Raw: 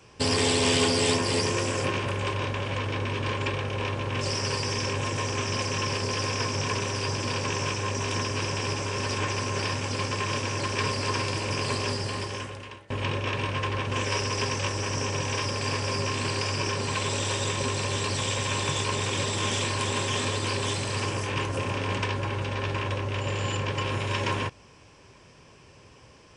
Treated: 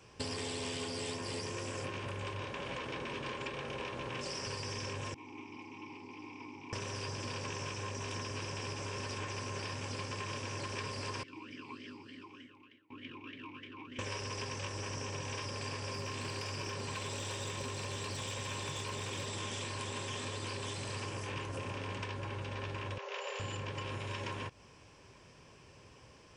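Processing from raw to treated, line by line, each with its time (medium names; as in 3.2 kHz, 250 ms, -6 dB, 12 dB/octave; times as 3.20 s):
2.42–4.47 s: hum notches 50/100/150/200/250 Hz
5.14–6.73 s: vowel filter u
11.23–13.99 s: talking filter i-u 3.3 Hz
15.93–19.28 s: overload inside the chain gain 21 dB
22.98–23.40 s: brick-wall FIR band-pass 380–7400 Hz
whole clip: compression, threshold -32 dBFS; trim -5 dB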